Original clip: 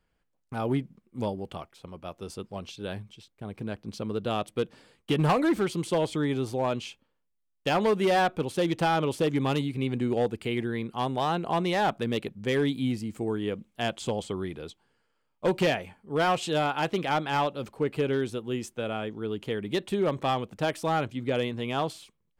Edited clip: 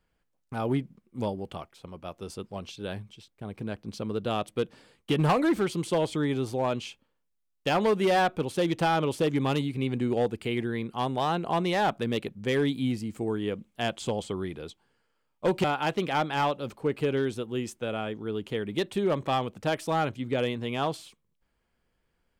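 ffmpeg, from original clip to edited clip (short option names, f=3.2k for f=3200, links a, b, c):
-filter_complex "[0:a]asplit=2[a][b];[a]atrim=end=15.642[c];[b]atrim=start=16.598[d];[c][d]acrossfade=d=0.004:c1=hsin:c2=hsin"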